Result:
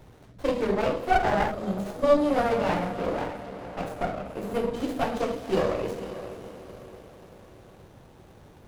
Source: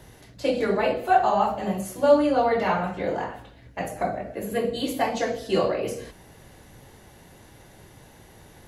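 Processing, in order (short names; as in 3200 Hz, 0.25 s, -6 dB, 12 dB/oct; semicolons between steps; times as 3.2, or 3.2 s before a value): diffused feedback echo 0.52 s, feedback 48%, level -12 dB; spectral gain 1.51–2.28, 680–3100 Hz -10 dB; running maximum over 17 samples; gain -1.5 dB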